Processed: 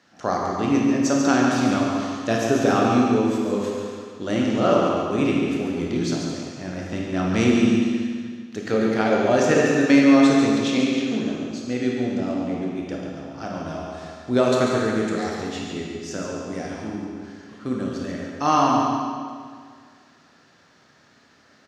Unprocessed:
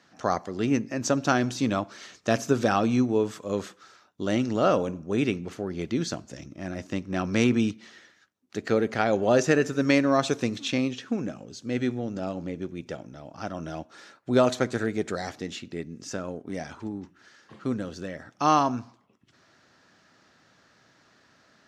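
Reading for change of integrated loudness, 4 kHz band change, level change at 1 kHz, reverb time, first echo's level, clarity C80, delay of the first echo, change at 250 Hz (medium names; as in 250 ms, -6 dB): +5.5 dB, +4.5 dB, +5.0 dB, 1.9 s, -7.0 dB, 0.0 dB, 141 ms, +7.0 dB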